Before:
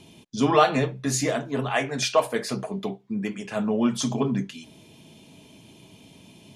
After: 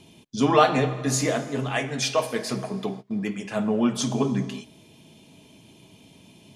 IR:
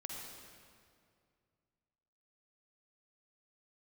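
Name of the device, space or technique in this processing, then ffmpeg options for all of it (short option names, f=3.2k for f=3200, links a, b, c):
keyed gated reverb: -filter_complex "[0:a]asettb=1/sr,asplit=3[a][b][c];[a]atrim=end=1.414[d];[b]atrim=start=1.41:end=2.49,asetpts=PTS-STARTPTS,afade=t=in:d=0.004:c=qsin,afade=t=out:st=1.076:d=0.004:c=qsin,equalizer=f=870:w=0.66:g=-4.5[e];[c]atrim=start=2.486[f];[d][e]acrossfade=d=0.004:c1=hsin:c2=qsin[g];[g][f]acrossfade=d=0.004:c1=qsin:c2=hsin,asplit=3[h][i][j];[1:a]atrim=start_sample=2205[k];[i][k]afir=irnorm=-1:irlink=0[l];[j]apad=whole_len=289289[m];[l][m]sidechaingate=range=-33dB:threshold=-39dB:ratio=16:detection=peak,volume=-6.5dB[n];[h][n]amix=inputs=2:normalize=0,volume=-1.5dB"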